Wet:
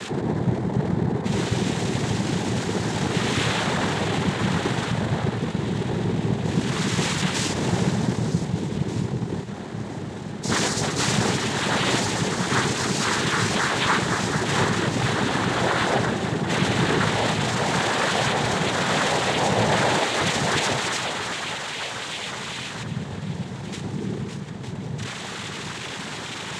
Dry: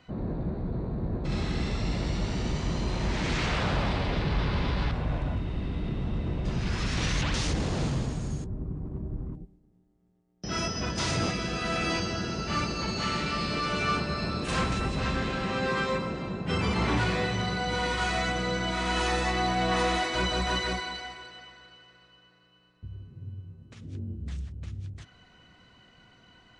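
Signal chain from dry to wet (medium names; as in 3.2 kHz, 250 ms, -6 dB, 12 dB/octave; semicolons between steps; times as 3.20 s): jump at every zero crossing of -34 dBFS; in parallel at 0 dB: gain riding within 3 dB; on the sum: echo whose repeats swap between lows and highs 769 ms, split 2 kHz, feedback 64%, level -12.5 dB; noise-vocoded speech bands 6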